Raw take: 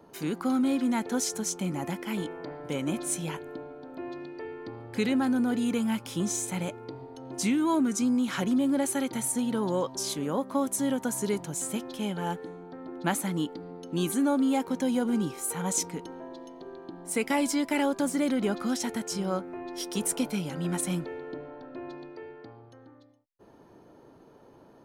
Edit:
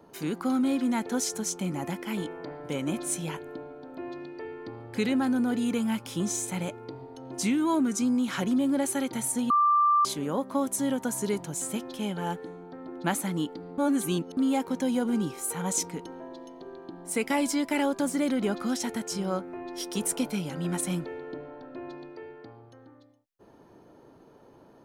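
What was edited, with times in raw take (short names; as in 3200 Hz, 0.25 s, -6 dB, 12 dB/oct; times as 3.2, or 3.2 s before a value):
9.5–10.05 bleep 1180 Hz -18.5 dBFS
13.78–14.37 reverse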